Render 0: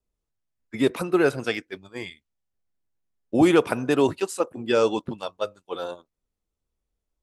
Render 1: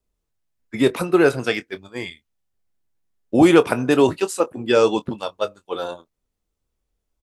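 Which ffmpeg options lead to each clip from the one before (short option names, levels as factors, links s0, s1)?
-filter_complex "[0:a]asplit=2[s0][s1];[s1]adelay=24,volume=0.224[s2];[s0][s2]amix=inputs=2:normalize=0,volume=1.68"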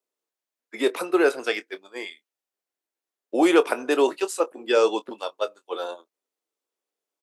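-af "highpass=f=330:w=0.5412,highpass=f=330:w=1.3066,volume=0.708"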